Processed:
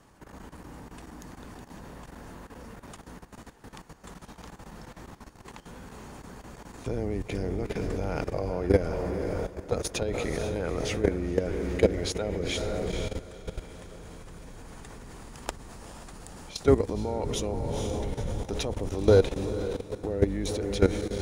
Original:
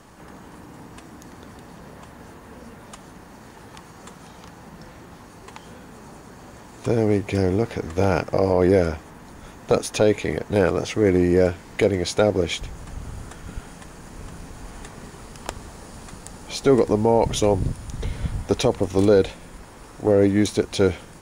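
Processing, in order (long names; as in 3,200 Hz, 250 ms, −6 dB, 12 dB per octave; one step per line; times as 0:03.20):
sub-octave generator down 2 octaves, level −2 dB
feedback delay with all-pass diffusion 478 ms, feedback 51%, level −8 dB
output level in coarse steps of 14 dB
level −2 dB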